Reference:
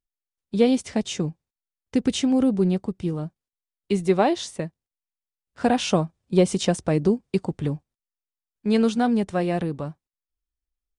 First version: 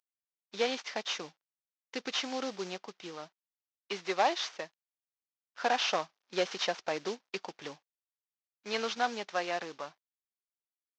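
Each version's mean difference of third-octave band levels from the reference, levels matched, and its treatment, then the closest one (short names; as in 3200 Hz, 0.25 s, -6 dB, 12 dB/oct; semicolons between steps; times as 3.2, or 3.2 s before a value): 10.5 dB: CVSD 32 kbps; HPF 880 Hz 12 dB/oct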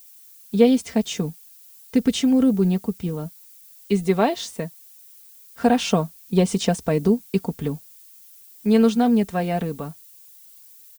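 4.0 dB: added noise violet -49 dBFS; comb 4.4 ms, depth 54%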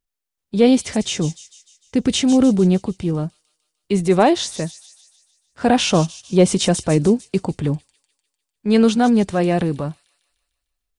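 3.0 dB: transient shaper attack -4 dB, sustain +2 dB; on a send: thin delay 0.15 s, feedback 54%, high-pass 5500 Hz, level -6.5 dB; on the sum: gain +6.5 dB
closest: third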